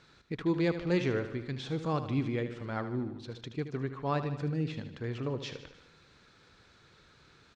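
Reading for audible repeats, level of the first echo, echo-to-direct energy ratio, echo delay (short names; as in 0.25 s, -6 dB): 5, -11.0 dB, -9.0 dB, 76 ms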